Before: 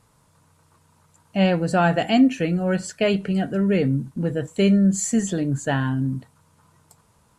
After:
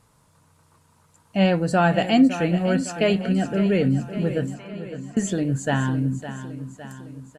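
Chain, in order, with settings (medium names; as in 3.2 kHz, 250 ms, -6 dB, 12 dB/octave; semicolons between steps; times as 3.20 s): 4.54–5.17 s: ladder band-pass 1.1 kHz, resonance 80%; feedback delay 559 ms, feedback 56%, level -12 dB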